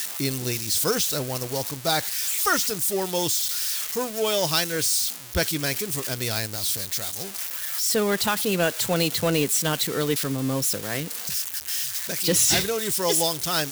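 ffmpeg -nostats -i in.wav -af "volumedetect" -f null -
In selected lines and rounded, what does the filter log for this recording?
mean_volume: -25.2 dB
max_volume: -9.1 dB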